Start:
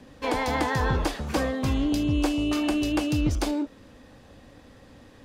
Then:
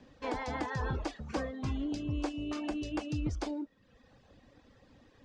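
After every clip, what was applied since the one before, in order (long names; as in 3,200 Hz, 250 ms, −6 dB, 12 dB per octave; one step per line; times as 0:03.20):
low-pass filter 6,900 Hz 24 dB per octave
dynamic equaliser 3,600 Hz, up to −4 dB, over −45 dBFS, Q 0.85
reverb reduction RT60 0.89 s
level −8 dB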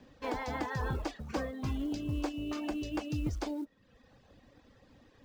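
floating-point word with a short mantissa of 4 bits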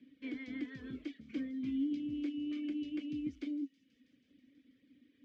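formant filter i
delay with a high-pass on its return 162 ms, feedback 79%, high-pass 5,200 Hz, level −13 dB
level +4.5 dB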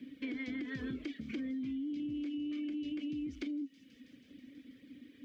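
brickwall limiter −38 dBFS, peak gain reduction 10.5 dB
downward compressor, threshold −48 dBFS, peak gain reduction 7.5 dB
level +11.5 dB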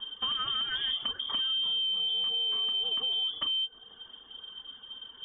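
in parallel at −10.5 dB: hard clipping −37.5 dBFS, distortion −15 dB
on the sum: voice inversion scrambler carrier 3,400 Hz
level +6 dB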